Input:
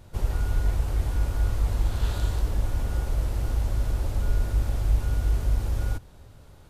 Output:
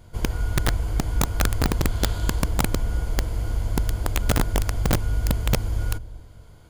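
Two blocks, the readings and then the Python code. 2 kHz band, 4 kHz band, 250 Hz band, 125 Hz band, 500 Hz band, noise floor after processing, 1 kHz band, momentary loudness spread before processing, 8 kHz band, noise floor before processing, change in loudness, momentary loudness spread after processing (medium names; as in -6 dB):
+10.0 dB, +11.0 dB, +10.0 dB, +2.0 dB, +7.5 dB, -46 dBFS, +8.5 dB, 3 LU, +12.0 dB, -49 dBFS, +2.5 dB, 4 LU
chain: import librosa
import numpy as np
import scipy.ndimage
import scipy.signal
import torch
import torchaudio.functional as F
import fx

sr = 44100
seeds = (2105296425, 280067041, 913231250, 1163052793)

y = fx.ripple_eq(x, sr, per_octave=1.8, db=7)
y = fx.echo_bbd(y, sr, ms=236, stages=1024, feedback_pct=32, wet_db=-14.5)
y = (np.mod(10.0 ** (14.0 / 20.0) * y + 1.0, 2.0) - 1.0) / 10.0 ** (14.0 / 20.0)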